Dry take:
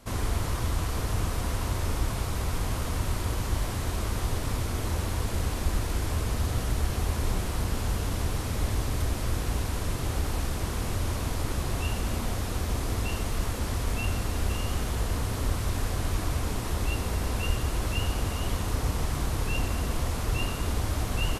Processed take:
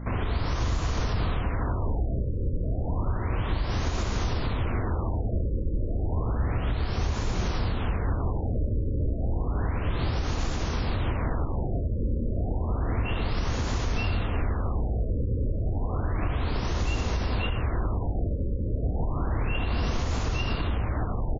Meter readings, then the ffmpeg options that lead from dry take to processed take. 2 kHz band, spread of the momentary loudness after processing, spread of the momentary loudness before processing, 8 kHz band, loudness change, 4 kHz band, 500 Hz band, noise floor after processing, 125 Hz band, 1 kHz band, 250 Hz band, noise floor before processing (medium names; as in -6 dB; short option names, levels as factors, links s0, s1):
-0.5 dB, 2 LU, 2 LU, -10.5 dB, +1.0 dB, -2.5 dB, +2.0 dB, -30 dBFS, +1.5 dB, +0.5 dB, +2.0 dB, -32 dBFS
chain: -filter_complex "[0:a]aeval=exprs='val(0)+0.00794*(sin(2*PI*60*n/s)+sin(2*PI*2*60*n/s)/2+sin(2*PI*3*60*n/s)/3+sin(2*PI*4*60*n/s)/4+sin(2*PI*5*60*n/s)/5)':c=same,asplit=2[s0][s1];[s1]aecho=0:1:86:0.398[s2];[s0][s2]amix=inputs=2:normalize=0,acontrast=90,alimiter=limit=0.133:level=0:latency=1:release=285,afftfilt=real='re*lt(b*sr/1024,580*pow(7300/580,0.5+0.5*sin(2*PI*0.31*pts/sr)))':imag='im*lt(b*sr/1024,580*pow(7300/580,0.5+0.5*sin(2*PI*0.31*pts/sr)))':win_size=1024:overlap=0.75"